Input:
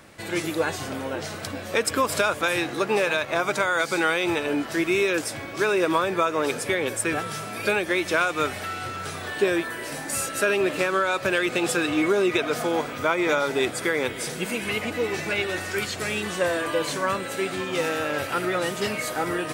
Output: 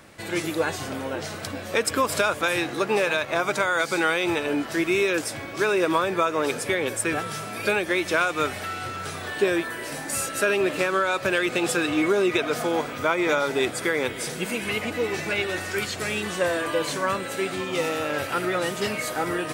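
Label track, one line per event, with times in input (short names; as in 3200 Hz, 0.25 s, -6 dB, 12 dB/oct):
17.540000	18.100000	notch 1600 Hz, Q 8.6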